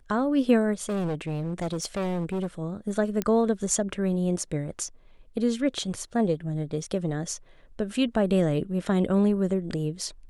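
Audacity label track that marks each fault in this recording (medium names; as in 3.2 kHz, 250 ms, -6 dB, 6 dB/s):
0.890000	2.470000	clipped -25 dBFS
3.220000	3.220000	pop -13 dBFS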